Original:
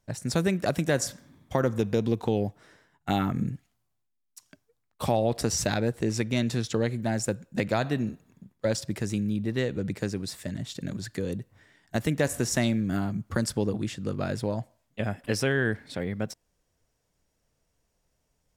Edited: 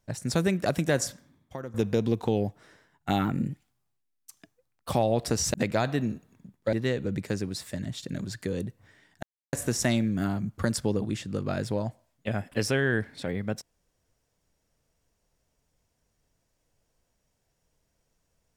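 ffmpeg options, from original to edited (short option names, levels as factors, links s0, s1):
-filter_complex "[0:a]asplit=8[s0][s1][s2][s3][s4][s5][s6][s7];[s0]atrim=end=1.74,asetpts=PTS-STARTPTS,afade=t=out:st=1.02:d=0.72:c=qua:silence=0.199526[s8];[s1]atrim=start=1.74:end=3.254,asetpts=PTS-STARTPTS,afade=t=in:d=0.004:c=hsin:silence=0.199526[s9];[s2]atrim=start=3.25:end=5.03,asetpts=PTS-STARTPTS,asetrate=47628,aresample=44100,atrim=end_sample=72683,asetpts=PTS-STARTPTS[s10];[s3]atrim=start=5.026:end=5.672[s11];[s4]atrim=start=7.508:end=8.702[s12];[s5]atrim=start=9.448:end=11.95,asetpts=PTS-STARTPTS,afade=t=out:st=2.498:d=0.004:c=hsin[s13];[s6]atrim=start=11.95:end=12.25,asetpts=PTS-STARTPTS,volume=0[s14];[s7]atrim=start=12.25,asetpts=PTS-STARTPTS,afade=t=in:d=0.004:c=hsin[s15];[s8][s9]concat=n=2:v=0:a=1[s16];[s16][s10]acrossfade=d=0.004:c1=hsin:c2=hsin[s17];[s17][s11]acrossfade=d=0.004:c1=hsin:c2=hsin[s18];[s18][s12]acrossfade=d=0.004:c1=hsin:c2=hsin[s19];[s13][s14][s15]concat=n=3:v=0:a=1[s20];[s19][s20]acrossfade=d=0.004:c1=hsin:c2=hsin"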